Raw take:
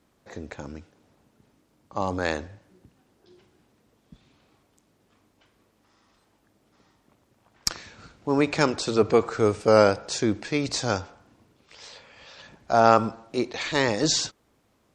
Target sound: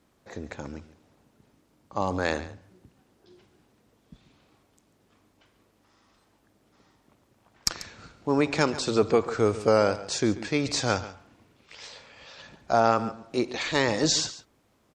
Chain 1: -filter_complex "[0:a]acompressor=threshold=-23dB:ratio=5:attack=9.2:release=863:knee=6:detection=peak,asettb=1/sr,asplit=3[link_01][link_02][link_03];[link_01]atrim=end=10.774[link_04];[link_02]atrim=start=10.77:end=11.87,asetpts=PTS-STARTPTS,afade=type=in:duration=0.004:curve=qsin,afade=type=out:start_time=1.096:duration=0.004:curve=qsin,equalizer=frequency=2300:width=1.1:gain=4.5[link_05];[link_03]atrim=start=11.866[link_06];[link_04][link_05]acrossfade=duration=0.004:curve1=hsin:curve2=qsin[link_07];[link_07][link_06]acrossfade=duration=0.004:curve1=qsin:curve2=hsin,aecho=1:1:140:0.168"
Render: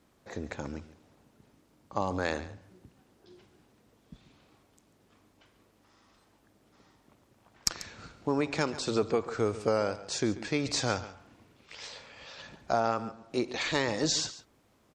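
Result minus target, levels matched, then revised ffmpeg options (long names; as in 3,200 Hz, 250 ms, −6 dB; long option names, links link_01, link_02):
downward compressor: peak gain reduction +7.5 dB
-filter_complex "[0:a]acompressor=threshold=-13.5dB:ratio=5:attack=9.2:release=863:knee=6:detection=peak,asettb=1/sr,asplit=3[link_01][link_02][link_03];[link_01]atrim=end=10.774[link_04];[link_02]atrim=start=10.77:end=11.87,asetpts=PTS-STARTPTS,afade=type=in:duration=0.004:curve=qsin,afade=type=out:start_time=1.096:duration=0.004:curve=qsin,equalizer=frequency=2300:width=1.1:gain=4.5[link_05];[link_03]atrim=start=11.866[link_06];[link_04][link_05]acrossfade=duration=0.004:curve1=hsin:curve2=qsin[link_07];[link_07][link_06]acrossfade=duration=0.004:curve1=qsin:curve2=hsin,aecho=1:1:140:0.168"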